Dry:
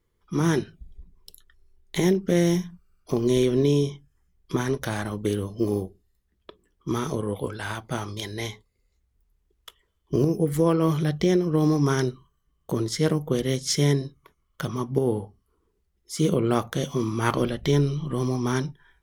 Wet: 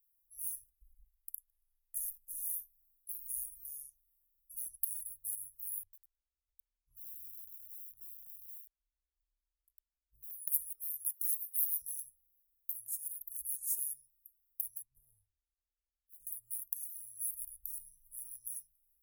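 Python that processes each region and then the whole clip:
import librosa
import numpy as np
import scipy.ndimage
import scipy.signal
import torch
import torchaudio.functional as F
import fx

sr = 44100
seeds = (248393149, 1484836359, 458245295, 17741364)

y = fx.chain(x, sr, fx.high_shelf(hz=12000.0, db=-12.0),
    fx.hum_notches(base_hz=60, count=2),
    fx.leveller(passes=1), at=(0.55, 2.43))
y = fx.chain(y, sr, fx.air_absorb(metres=410.0),
    fx.echo_crushed(ms=101, feedback_pct=35, bits=7, wet_db=-11), at=(5.83, 10.31))
y = fx.chain(y, sr, fx.highpass(hz=320.0, slope=12),
    fx.high_shelf(hz=4500.0, db=11.5), at=(11.06, 11.82))
y = fx.chain(y, sr, fx.moving_average(points=18),
    fx.running_max(window=5), at=(14.82, 16.27))
y = scipy.signal.sosfilt(scipy.signal.cheby2(4, 60, [160.0, 4400.0], 'bandstop', fs=sr, output='sos'), y)
y = fx.riaa(y, sr, side='recording')
y = y * 10.0 ** (-2.0 / 20.0)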